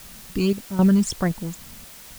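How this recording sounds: random-step tremolo 3.8 Hz, depth 80%; phasing stages 12, 1.8 Hz, lowest notch 580–3600 Hz; a quantiser's noise floor 8-bit, dither triangular

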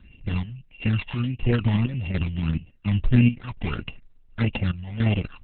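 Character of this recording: a buzz of ramps at a fixed pitch in blocks of 16 samples; chopped level 1.4 Hz, depth 65%, duty 60%; phasing stages 12, 1.6 Hz, lowest notch 420–1400 Hz; Opus

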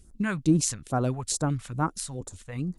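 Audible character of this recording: phasing stages 2, 2.3 Hz, lowest notch 310–2700 Hz

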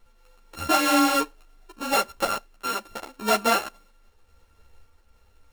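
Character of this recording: a buzz of ramps at a fixed pitch in blocks of 32 samples; random-step tremolo; a quantiser's noise floor 12-bit, dither none; a shimmering, thickened sound

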